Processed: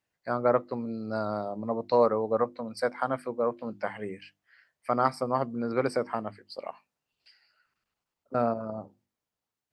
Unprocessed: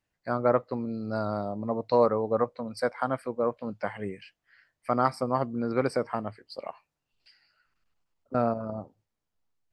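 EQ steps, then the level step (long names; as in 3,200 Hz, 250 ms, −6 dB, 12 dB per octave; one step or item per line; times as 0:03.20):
high-pass filter 130 Hz 6 dB per octave
mains-hum notches 50/100/150/200/250/300/350 Hz
0.0 dB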